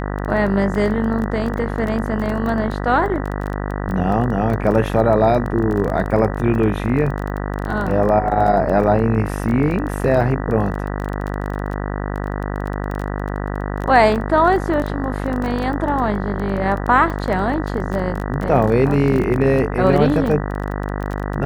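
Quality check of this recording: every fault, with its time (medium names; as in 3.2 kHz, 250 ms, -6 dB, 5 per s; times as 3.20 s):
buzz 50 Hz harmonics 39 -24 dBFS
crackle 18 per s -23 dBFS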